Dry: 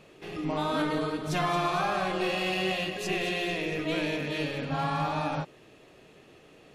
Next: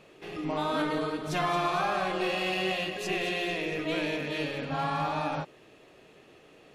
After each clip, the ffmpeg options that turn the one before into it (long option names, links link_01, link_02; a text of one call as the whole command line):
ffmpeg -i in.wav -af "bass=frequency=250:gain=-4,treble=frequency=4000:gain=-2" out.wav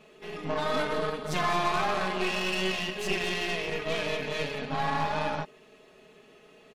ffmpeg -i in.wav -af "aecho=1:1:4.7:0.88,aeval=exprs='0.2*(cos(1*acos(clip(val(0)/0.2,-1,1)))-cos(1*PI/2))+0.0282*(cos(6*acos(clip(val(0)/0.2,-1,1)))-cos(6*PI/2))':channel_layout=same,volume=-2.5dB" out.wav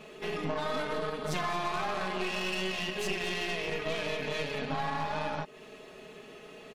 ffmpeg -i in.wav -af "acompressor=threshold=-37dB:ratio=4,volume=6.5dB" out.wav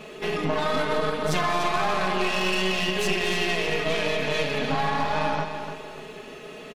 ffmpeg -i in.wav -af "aecho=1:1:295|590|885|1180:0.376|0.135|0.0487|0.0175,volume=7.5dB" out.wav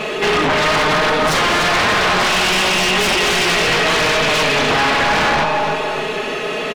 ffmpeg -i in.wav -filter_complex "[0:a]aeval=exprs='0.299*sin(PI/2*5.01*val(0)/0.299)':channel_layout=same,asplit=2[link_01][link_02];[link_02]highpass=frequency=720:poles=1,volume=9dB,asoftclip=type=tanh:threshold=-10dB[link_03];[link_01][link_03]amix=inputs=2:normalize=0,lowpass=frequency=3700:poles=1,volume=-6dB" out.wav